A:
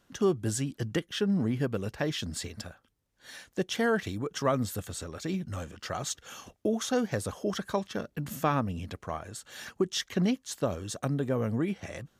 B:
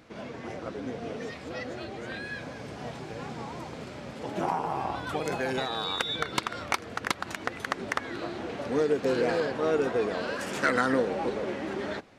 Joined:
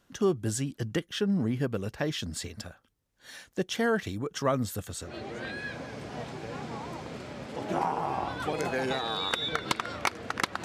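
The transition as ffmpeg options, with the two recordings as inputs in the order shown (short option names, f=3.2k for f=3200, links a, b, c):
-filter_complex "[0:a]apad=whole_dur=10.64,atrim=end=10.64,atrim=end=5.2,asetpts=PTS-STARTPTS[a];[1:a]atrim=start=1.67:end=7.31,asetpts=PTS-STARTPTS[b];[a][b]acrossfade=d=0.2:c1=tri:c2=tri"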